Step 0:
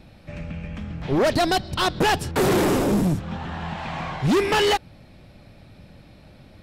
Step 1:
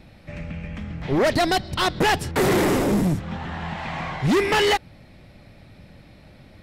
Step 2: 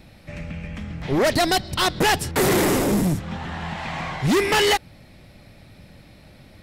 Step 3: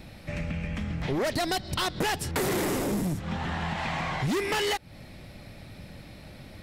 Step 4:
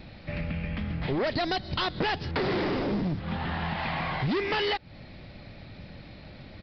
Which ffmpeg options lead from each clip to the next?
-af "equalizer=f=2k:t=o:w=0.28:g=5.5"
-af "highshelf=f=5.3k:g=8.5"
-af "acompressor=threshold=-29dB:ratio=6,volume=2dB"
-af "aresample=11025,aresample=44100"

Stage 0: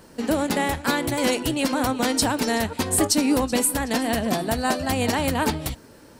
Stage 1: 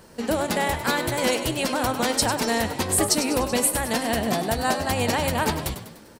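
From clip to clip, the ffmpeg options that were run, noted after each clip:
-filter_complex "[0:a]equalizer=f=280:t=o:w=0.27:g=-9,asplit=2[a][b];[b]asplit=5[c][d][e][f][g];[c]adelay=99,afreqshift=50,volume=-10.5dB[h];[d]adelay=198,afreqshift=100,volume=-16.5dB[i];[e]adelay=297,afreqshift=150,volume=-22.5dB[j];[f]adelay=396,afreqshift=200,volume=-28.6dB[k];[g]adelay=495,afreqshift=250,volume=-34.6dB[l];[h][i][j][k][l]amix=inputs=5:normalize=0[m];[a][m]amix=inputs=2:normalize=0"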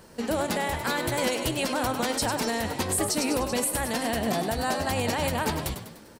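-af "alimiter=limit=-14.5dB:level=0:latency=1:release=52,volume=-1.5dB"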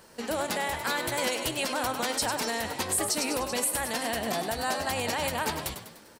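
-af "lowshelf=f=410:g=-9"

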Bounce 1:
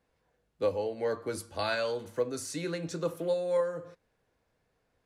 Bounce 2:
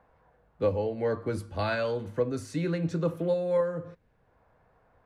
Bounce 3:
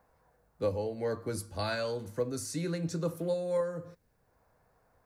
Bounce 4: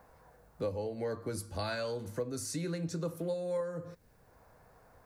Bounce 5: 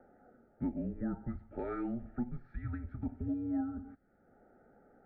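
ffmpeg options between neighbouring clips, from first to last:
-filter_complex "[0:a]bass=f=250:g=10,treble=f=4k:g=-11,acrossover=split=650|1300[a][b][c];[b]acompressor=mode=upward:threshold=-54dB:ratio=2.5[d];[a][d][c]amix=inputs=3:normalize=0,volume=1.5dB"
-af "aexciter=amount=3.9:drive=6:freq=4.4k,volume=-4.5dB"
-af "acompressor=threshold=-50dB:ratio=2,volume=8dB"
-af "asuperstop=centerf=1300:order=8:qfactor=3.6,highpass=f=230:t=q:w=0.5412,highpass=f=230:t=q:w=1.307,lowpass=f=2k:t=q:w=0.5176,lowpass=f=2k:t=q:w=0.7071,lowpass=f=2k:t=q:w=1.932,afreqshift=-250"

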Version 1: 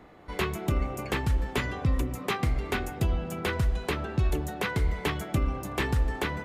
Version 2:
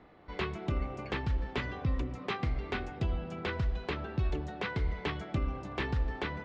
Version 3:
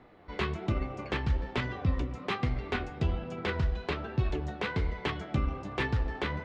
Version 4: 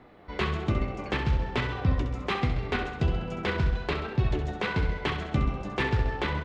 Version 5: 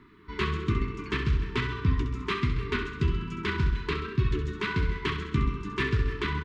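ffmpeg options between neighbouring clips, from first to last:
-af "lowpass=f=5k:w=0.5412,lowpass=f=5k:w=1.3066,volume=-5.5dB"
-af "flanger=delay=7.9:depth=6.5:regen=54:speed=1.2:shape=sinusoidal,aeval=exprs='0.0596*(cos(1*acos(clip(val(0)/0.0596,-1,1)))-cos(1*PI/2))+0.0015*(cos(7*acos(clip(val(0)/0.0596,-1,1)))-cos(7*PI/2))':c=same,volume=7dB"
-af "aecho=1:1:66|132|198|264|330|396|462:0.398|0.231|0.134|0.0777|0.0451|0.0261|0.0152,volume=3dB"
-filter_complex "[0:a]asplit=2[a][b];[b]adelay=300,highpass=300,lowpass=3.4k,asoftclip=type=hard:threshold=-22dB,volume=-16dB[c];[a][c]amix=inputs=2:normalize=0,afftfilt=real='re*(1-between(b*sr/4096,450,910))':imag='im*(1-between(b*sr/4096,450,910))':win_size=4096:overlap=0.75"

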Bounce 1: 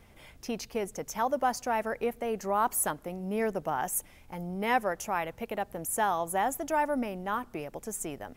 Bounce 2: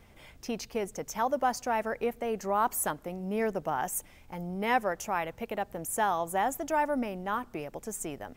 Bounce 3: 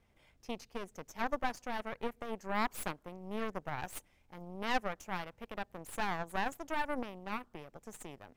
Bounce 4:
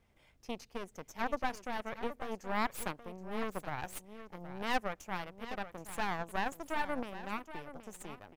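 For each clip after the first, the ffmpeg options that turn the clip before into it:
-af "equalizer=f=11k:w=6.2:g=-9"
-af "aeval=exprs='0.188*(cos(1*acos(clip(val(0)/0.188,-1,1)))-cos(1*PI/2))+0.0668*(cos(4*acos(clip(val(0)/0.188,-1,1)))-cos(4*PI/2))+0.0133*(cos(7*acos(clip(val(0)/0.188,-1,1)))-cos(7*PI/2))':c=same,highshelf=f=12k:g=-7.5,volume=-8dB"
-af "aecho=1:1:773:0.237"

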